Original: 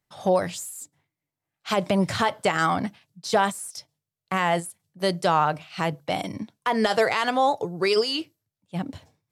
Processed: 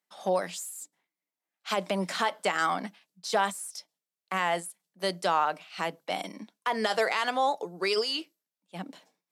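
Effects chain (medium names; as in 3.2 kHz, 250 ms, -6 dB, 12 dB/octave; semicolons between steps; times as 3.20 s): elliptic high-pass 180 Hz; bass shelf 480 Hz -8.5 dB; trim -2 dB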